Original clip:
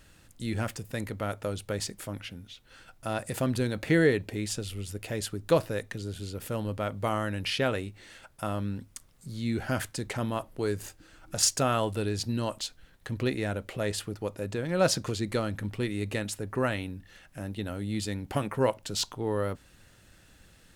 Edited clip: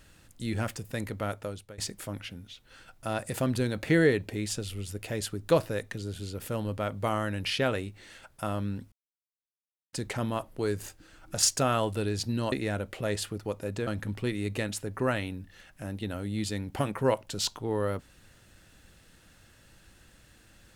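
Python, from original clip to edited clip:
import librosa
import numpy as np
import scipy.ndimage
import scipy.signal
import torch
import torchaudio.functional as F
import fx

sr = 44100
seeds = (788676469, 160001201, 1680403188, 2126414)

y = fx.edit(x, sr, fx.fade_out_to(start_s=1.28, length_s=0.5, floor_db=-21.0),
    fx.silence(start_s=8.92, length_s=1.01),
    fx.cut(start_s=12.52, length_s=0.76),
    fx.cut(start_s=14.63, length_s=0.8), tone=tone)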